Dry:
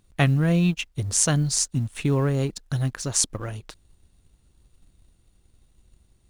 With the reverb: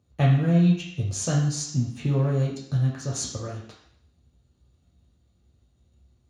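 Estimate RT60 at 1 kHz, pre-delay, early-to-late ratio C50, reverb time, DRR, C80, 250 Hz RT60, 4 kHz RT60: 0.70 s, 3 ms, 4.5 dB, 0.70 s, -3.5 dB, 7.5 dB, 0.65 s, 0.70 s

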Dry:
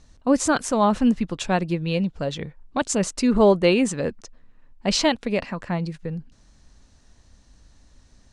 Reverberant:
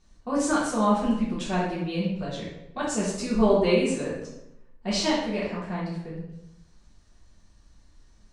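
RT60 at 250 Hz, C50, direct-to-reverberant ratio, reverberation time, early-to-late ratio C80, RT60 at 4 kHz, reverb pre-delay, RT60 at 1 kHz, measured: 1.0 s, 1.5 dB, -8.0 dB, 0.80 s, 5.0 dB, 0.65 s, 3 ms, 0.80 s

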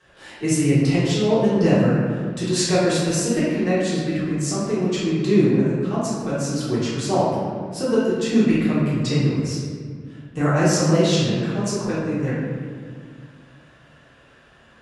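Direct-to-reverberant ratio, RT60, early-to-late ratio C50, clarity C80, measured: -10.0 dB, 1.9 s, -2.5 dB, 1.0 dB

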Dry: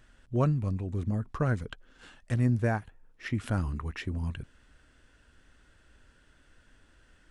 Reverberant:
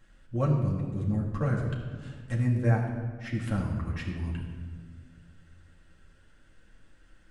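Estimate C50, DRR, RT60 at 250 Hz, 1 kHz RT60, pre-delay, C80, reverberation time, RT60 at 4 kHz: 4.5 dB, -3.5 dB, 2.4 s, 1.4 s, 4 ms, 5.5 dB, 1.6 s, 1.0 s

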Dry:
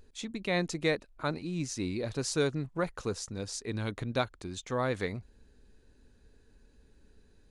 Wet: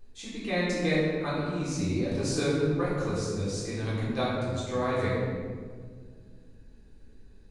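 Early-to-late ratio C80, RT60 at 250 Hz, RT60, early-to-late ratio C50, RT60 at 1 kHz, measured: 1.0 dB, 3.0 s, 1.9 s, -1.0 dB, 1.5 s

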